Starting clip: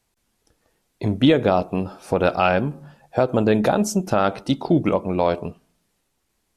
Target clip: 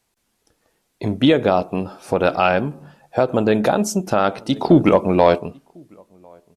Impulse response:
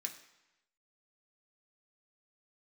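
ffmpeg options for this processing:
-filter_complex "[0:a]lowshelf=frequency=120:gain=-7,asplit=2[link_01][link_02];[link_02]adelay=1050,volume=-26dB,highshelf=frequency=4000:gain=-23.6[link_03];[link_01][link_03]amix=inputs=2:normalize=0,asettb=1/sr,asplit=3[link_04][link_05][link_06];[link_04]atrim=end=4.564[link_07];[link_05]atrim=start=4.56:end=5.38,asetpts=PTS-STARTPTS,afade=type=in:duration=0.004:curve=qsin,afade=type=out:start_time=0.816:duration=0.004:curve=qsin,acontrast=45[link_08];[link_06]atrim=start=5.376[link_09];[link_07][link_08]acrossfade=duration=0.004:curve1=hsin:curve2=qsin[link_10];[link_10][link_09]acrossfade=duration=0.004:curve1=qsin:curve2=hsin,volume=2dB"

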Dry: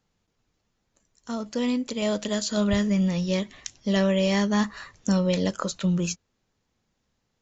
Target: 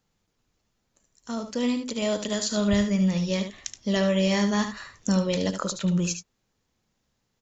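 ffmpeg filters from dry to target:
ffmpeg -i in.wav -filter_complex "[0:a]highshelf=frequency=6500:gain=5,asplit=2[link_01][link_02];[link_02]aecho=0:1:74:0.376[link_03];[link_01][link_03]amix=inputs=2:normalize=0,volume=-1dB" out.wav

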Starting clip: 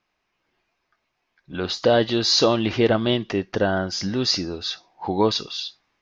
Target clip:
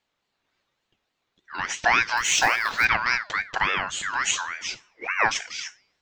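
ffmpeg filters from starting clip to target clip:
ffmpeg -i in.wav -filter_complex "[0:a]asettb=1/sr,asplit=3[link_01][link_02][link_03];[link_01]atrim=end=2.174[link_04];[link_02]atrim=start=2.17:end=2.85,asetpts=PTS-STARTPTS,afade=type=in:duration=0.004:curve=qsin,afade=type=out:start_time=0.676:duration=0.004:curve=qsin,acrusher=bits=6:mode=log:mix=0:aa=0.000001[link_05];[link_03]atrim=start=2.846[link_06];[link_04][link_05]acrossfade=duration=0.004:curve1=hsin:curve2=qsin[link_07];[link_07][link_06]acrossfade=duration=0.004:curve1=qsin:curve2=hsin,bandreject=frequency=202.2:width_type=h:width=4,bandreject=frequency=404.4:width_type=h:width=4,bandreject=frequency=606.6:width_type=h:width=4,bandreject=frequency=808.8:width_type=h:width=4,bandreject=frequency=1011:width_type=h:width=4,bandreject=frequency=1213.2:width_type=h:width=4,bandreject=frequency=1415.4:width_type=h:width=4,bandreject=frequency=1617.6:width_type=h:width=4,bandreject=frequency=1819.8:width_type=h:width=4,bandreject=frequency=2022:width_type=h:width=4,bandreject=frequency=2224.2:width_type=h:width=4,bandreject=frequency=2426.4:width_type=h:width=4,bandreject=frequency=2628.6:width_type=h:width=4,bandreject=frequency=2830.8:width_type=h:width=4,bandreject=frequency=3033:width_type=h:width=4,bandreject=frequency=3235.2:width_type=h:width=4,bandreject=frequency=3437.4:width_type=h:width=4,bandreject=frequency=3639.6:width_type=h:width=4,bandreject=frequency=3841.8:width_type=h:width=4,bandreject=frequency=4044:width_type=h:width=4,bandreject=frequency=4246.2:width_type=h:width=4,aeval=exprs='val(0)*sin(2*PI*1600*n/s+1600*0.25/3.5*sin(2*PI*3.5*n/s))':channel_layout=same" out.wav

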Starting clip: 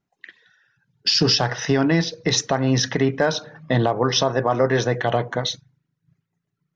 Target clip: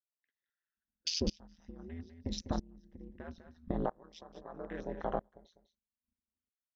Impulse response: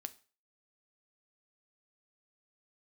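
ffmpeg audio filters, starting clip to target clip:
-filter_complex "[0:a]afwtdn=0.0631,asplit=3[link_01][link_02][link_03];[link_01]afade=type=out:start_time=1.26:duration=0.02[link_04];[link_02]asubboost=boost=7:cutoff=210,afade=type=in:start_time=1.26:duration=0.02,afade=type=out:start_time=3.71:duration=0.02[link_05];[link_03]afade=type=in:start_time=3.71:duration=0.02[link_06];[link_04][link_05][link_06]amix=inputs=3:normalize=0,acompressor=threshold=-24dB:ratio=6,aeval=exprs='val(0)*sin(2*PI*83*n/s)':channel_layout=same,aecho=1:1:199:0.178,aeval=exprs='val(0)*pow(10,-28*if(lt(mod(-0.77*n/s,1),2*abs(-0.77)/1000),1-mod(-0.77*n/s,1)/(2*abs(-0.77)/1000),(mod(-0.77*n/s,1)-2*abs(-0.77)/1000)/(1-2*abs(-0.77)/1000))/20)':channel_layout=same,volume=-1.5dB"

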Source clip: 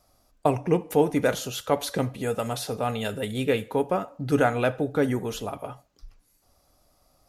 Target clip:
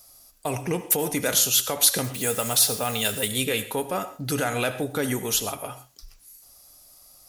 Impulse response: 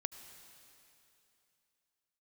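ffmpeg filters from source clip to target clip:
-filter_complex "[0:a]alimiter=limit=-17dB:level=0:latency=1:release=43,aeval=exprs='0.141*(cos(1*acos(clip(val(0)/0.141,-1,1)))-cos(1*PI/2))+0.00224*(cos(5*acos(clip(val(0)/0.141,-1,1)))-cos(5*PI/2))':channel_layout=same,asettb=1/sr,asplit=3[link_01][link_02][link_03];[link_01]atrim=end=2.044[link_04];[link_02]atrim=start=2.04:end=3.28,asetpts=PTS-STARTPTS,afade=type=in:duration=0.004:curve=qsin,afade=type=out:start_time=1.236:duration=0.004:curve=qsin,acrusher=bits=7:mix=0:aa=0.5[link_05];[link_03]atrim=start=3.276[link_06];[link_04][link_05]acrossfade=duration=0.004:curve1=hsin:curve2=qsin[link_07];[link_07][link_06]acrossfade=duration=0.004:curve1=qsin:curve2=hsin,crystalizer=i=7:c=0[link_08];[1:a]atrim=start_sample=2205,afade=type=out:start_time=0.19:duration=0.01,atrim=end_sample=8820[link_09];[link_08][link_09]afir=irnorm=-1:irlink=0"

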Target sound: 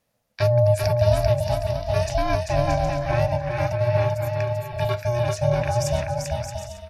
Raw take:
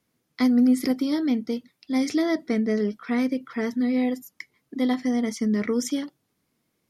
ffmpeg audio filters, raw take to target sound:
ffmpeg -i in.wav -af "aecho=1:1:390|624|764.4|848.6|899.2:0.631|0.398|0.251|0.158|0.1,aeval=exprs='val(0)*sin(2*PI*360*n/s)':channel_layout=same,volume=3.5dB" out.wav

